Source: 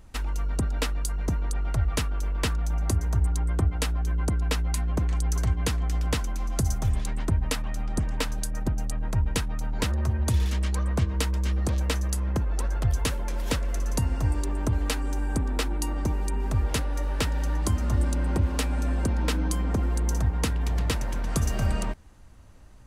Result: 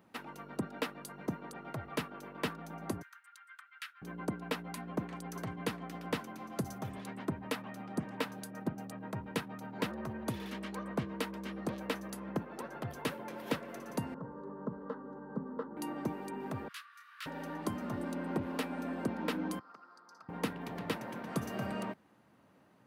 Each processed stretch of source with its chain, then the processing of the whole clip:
3.02–4.02 elliptic high-pass 1400 Hz, stop band 70 dB + high shelf 3500 Hz -7 dB
14.14–15.77 LPF 1100 Hz + fixed phaser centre 480 Hz, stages 8
16.68–17.26 rippled Chebyshev high-pass 1100 Hz, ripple 3 dB + detuned doubles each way 59 cents
19.59–20.29 double band-pass 2500 Hz, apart 1.9 oct + core saturation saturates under 1200 Hz
whole clip: HPF 160 Hz 24 dB/oct; bell 7200 Hz -14.5 dB 1.5 oct; gain -4 dB

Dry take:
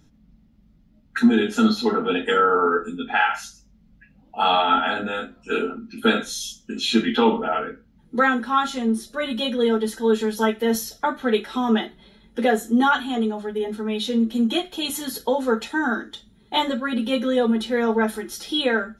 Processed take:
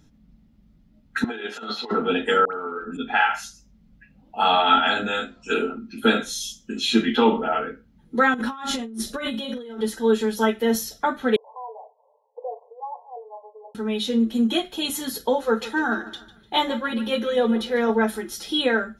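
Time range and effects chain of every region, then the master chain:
1.24–1.91 three-band isolator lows -22 dB, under 450 Hz, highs -16 dB, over 4000 Hz + negative-ratio compressor -30 dBFS, ratio -0.5
2.45–2.97 compressor 4:1, threshold -29 dBFS + dispersion highs, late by 87 ms, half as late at 1200 Hz
4.66–5.54 steep low-pass 7600 Hz + high shelf 3000 Hz +11 dB
8.34–9.81 doubler 45 ms -9.5 dB + negative-ratio compressor -31 dBFS
11.36–13.75 switching dead time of 0.096 ms + compressor 2:1, threshold -34 dBFS + brick-wall FIR band-pass 440–1100 Hz
15.38–17.9 bell 8100 Hz -7 dB 0.33 oct + notch 260 Hz, Q 7.4 + feedback echo 0.149 s, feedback 39%, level -16 dB
whole clip: dry

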